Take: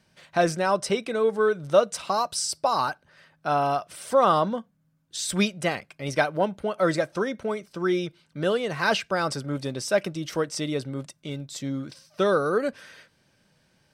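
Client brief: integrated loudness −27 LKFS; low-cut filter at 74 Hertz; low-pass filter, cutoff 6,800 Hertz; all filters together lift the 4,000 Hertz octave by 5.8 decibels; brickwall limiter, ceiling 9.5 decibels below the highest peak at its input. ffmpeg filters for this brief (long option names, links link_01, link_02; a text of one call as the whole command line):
ffmpeg -i in.wav -af "highpass=74,lowpass=6800,equalizer=frequency=4000:width_type=o:gain=8,volume=0.5dB,alimiter=limit=-14.5dB:level=0:latency=1" out.wav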